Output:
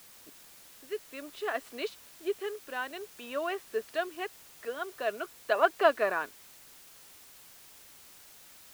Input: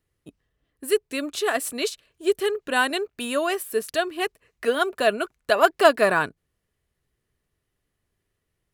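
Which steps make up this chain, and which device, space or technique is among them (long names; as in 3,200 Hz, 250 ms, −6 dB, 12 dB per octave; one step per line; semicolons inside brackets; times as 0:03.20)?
shortwave radio (band-pass filter 340–2,800 Hz; amplitude tremolo 0.53 Hz, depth 56%; white noise bed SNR 19 dB)
level −6.5 dB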